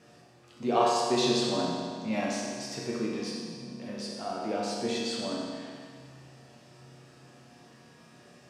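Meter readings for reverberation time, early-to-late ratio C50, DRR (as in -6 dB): 2.0 s, -1.0 dB, -4.5 dB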